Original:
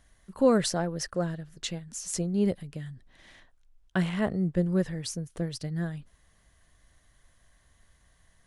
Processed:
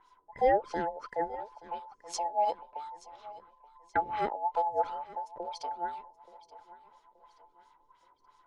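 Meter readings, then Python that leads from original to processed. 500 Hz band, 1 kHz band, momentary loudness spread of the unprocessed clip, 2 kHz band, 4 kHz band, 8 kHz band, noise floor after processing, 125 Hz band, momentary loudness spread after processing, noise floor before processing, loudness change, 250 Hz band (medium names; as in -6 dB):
-3.0 dB, +10.5 dB, 12 LU, -3.0 dB, -11.0 dB, -12.5 dB, -67 dBFS, -24.0 dB, 17 LU, -65 dBFS, -3.5 dB, -18.0 dB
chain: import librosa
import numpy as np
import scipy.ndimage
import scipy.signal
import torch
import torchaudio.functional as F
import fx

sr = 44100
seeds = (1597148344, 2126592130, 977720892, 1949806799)

p1 = fx.band_invert(x, sr, width_hz=1000)
p2 = fx.filter_lfo_lowpass(p1, sr, shape='sine', hz=2.9, low_hz=400.0, high_hz=5600.0, q=1.5)
p3 = p2 + fx.echo_feedback(p2, sr, ms=877, feedback_pct=38, wet_db=-18.5, dry=0)
y = p3 * librosa.db_to_amplitude(-4.0)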